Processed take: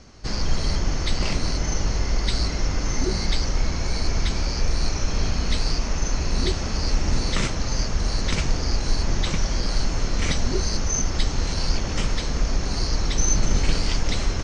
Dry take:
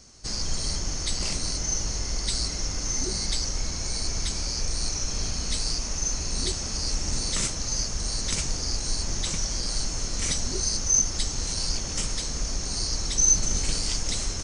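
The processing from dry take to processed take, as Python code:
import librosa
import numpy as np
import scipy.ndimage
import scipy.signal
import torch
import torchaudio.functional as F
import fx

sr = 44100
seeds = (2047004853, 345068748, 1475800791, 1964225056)

y = scipy.signal.sosfilt(scipy.signal.butter(2, 3000.0, 'lowpass', fs=sr, output='sos'), x)
y = y * librosa.db_to_amplitude(8.0)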